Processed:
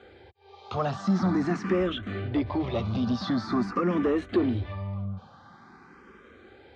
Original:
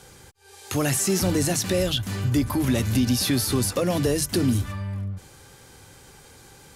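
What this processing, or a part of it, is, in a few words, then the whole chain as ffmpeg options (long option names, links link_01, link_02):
barber-pole phaser into a guitar amplifier: -filter_complex "[0:a]asplit=2[link_01][link_02];[link_02]afreqshift=0.46[link_03];[link_01][link_03]amix=inputs=2:normalize=1,asoftclip=type=tanh:threshold=-20dB,highpass=76,equalizer=frequency=130:width_type=q:width=4:gain=-9,equalizer=frequency=210:width_type=q:width=4:gain=8,equalizer=frequency=360:width_type=q:width=4:gain=5,equalizer=frequency=700:width_type=q:width=4:gain=6,equalizer=frequency=1200:width_type=q:width=4:gain=9,equalizer=frequency=2800:width_type=q:width=4:gain=-6,lowpass=frequency=3500:width=0.5412,lowpass=frequency=3500:width=1.3066"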